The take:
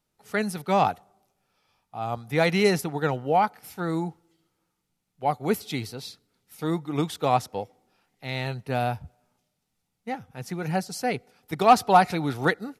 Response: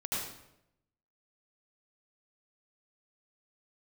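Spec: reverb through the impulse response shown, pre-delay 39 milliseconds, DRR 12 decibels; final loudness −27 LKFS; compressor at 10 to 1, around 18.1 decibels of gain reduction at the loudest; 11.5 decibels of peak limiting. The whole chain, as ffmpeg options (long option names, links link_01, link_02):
-filter_complex "[0:a]acompressor=threshold=-30dB:ratio=10,alimiter=level_in=6dB:limit=-24dB:level=0:latency=1,volume=-6dB,asplit=2[link_01][link_02];[1:a]atrim=start_sample=2205,adelay=39[link_03];[link_02][link_03]afir=irnorm=-1:irlink=0,volume=-16.5dB[link_04];[link_01][link_04]amix=inputs=2:normalize=0,volume=14dB"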